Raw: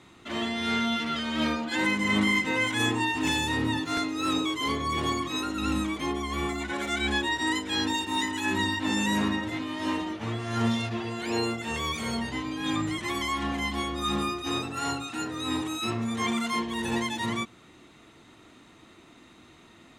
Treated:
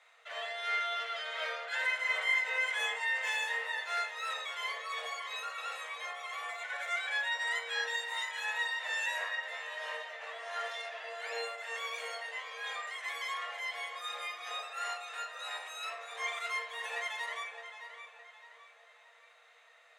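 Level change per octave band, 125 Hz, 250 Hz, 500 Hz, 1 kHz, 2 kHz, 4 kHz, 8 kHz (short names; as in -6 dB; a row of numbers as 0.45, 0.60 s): under -40 dB, under -40 dB, -10.0 dB, -8.0 dB, -2.5 dB, -8.0 dB, -10.0 dB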